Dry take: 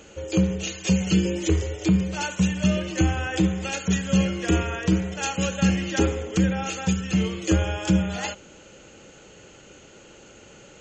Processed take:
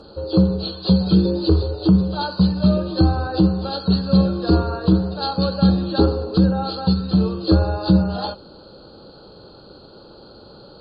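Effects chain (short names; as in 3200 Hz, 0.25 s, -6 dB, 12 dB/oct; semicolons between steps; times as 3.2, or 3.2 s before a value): nonlinear frequency compression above 1800 Hz 1.5:1; Chebyshev band-stop 1200–3800 Hz, order 2; gain +6.5 dB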